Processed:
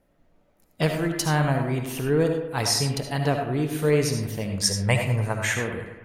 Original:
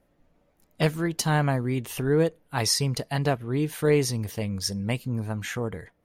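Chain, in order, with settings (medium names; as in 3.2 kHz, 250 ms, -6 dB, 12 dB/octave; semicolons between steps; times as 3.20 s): 4.60–5.54 s: graphic EQ 125/250/500/1000/2000/8000 Hz +8/-8/+6/+7/+8/+10 dB; bucket-brigade echo 100 ms, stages 2048, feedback 58%, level -11 dB; algorithmic reverb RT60 0.5 s, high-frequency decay 0.5×, pre-delay 35 ms, DRR 5 dB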